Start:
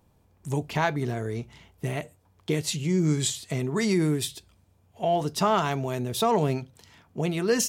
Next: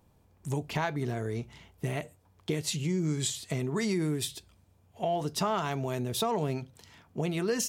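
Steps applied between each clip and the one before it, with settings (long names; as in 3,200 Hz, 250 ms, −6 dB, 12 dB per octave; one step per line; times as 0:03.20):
downward compressor 2.5 to 1, threshold −27 dBFS, peak gain reduction 6.5 dB
level −1 dB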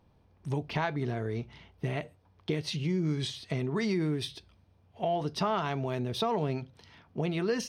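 Savitzky-Golay smoothing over 15 samples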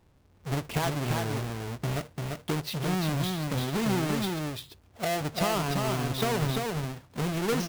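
each half-wave held at its own peak
single-tap delay 344 ms −3.5 dB
level −3 dB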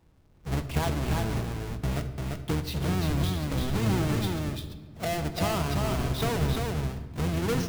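sub-octave generator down 1 octave, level +2 dB
rectangular room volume 1,500 cubic metres, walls mixed, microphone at 0.64 metres
level −2 dB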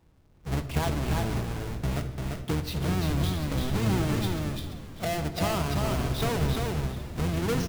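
echo with shifted repeats 398 ms, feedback 49%, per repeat −100 Hz, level −14 dB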